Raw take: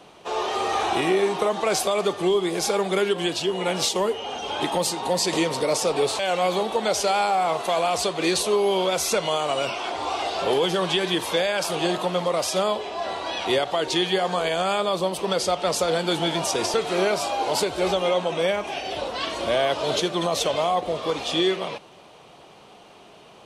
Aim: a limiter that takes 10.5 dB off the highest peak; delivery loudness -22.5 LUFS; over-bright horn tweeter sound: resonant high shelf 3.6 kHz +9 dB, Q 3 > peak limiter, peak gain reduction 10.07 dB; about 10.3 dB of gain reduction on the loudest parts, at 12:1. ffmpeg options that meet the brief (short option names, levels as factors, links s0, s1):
-af "acompressor=threshold=0.0398:ratio=12,alimiter=level_in=1.68:limit=0.0631:level=0:latency=1,volume=0.596,highshelf=f=3600:t=q:w=3:g=9,volume=3.76,alimiter=limit=0.224:level=0:latency=1"